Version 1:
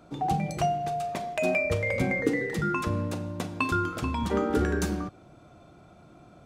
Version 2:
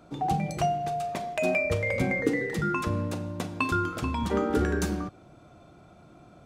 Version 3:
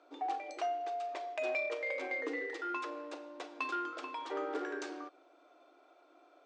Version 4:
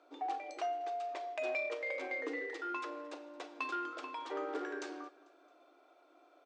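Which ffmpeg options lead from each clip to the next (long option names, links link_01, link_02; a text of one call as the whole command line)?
ffmpeg -i in.wav -af anull out.wav
ffmpeg -i in.wav -filter_complex "[0:a]asoftclip=type=tanh:threshold=-19.5dB,afftfilt=real='re*between(b*sr/4096,260,9100)':imag='im*between(b*sr/4096,260,9100)':win_size=4096:overlap=0.75,acrossover=split=330 6000:gain=0.224 1 0.112[link_01][link_02][link_03];[link_01][link_02][link_03]amix=inputs=3:normalize=0,volume=-6.5dB" out.wav
ffmpeg -i in.wav -af "aecho=1:1:222|444|666:0.0708|0.0368|0.0191,volume=-1.5dB" out.wav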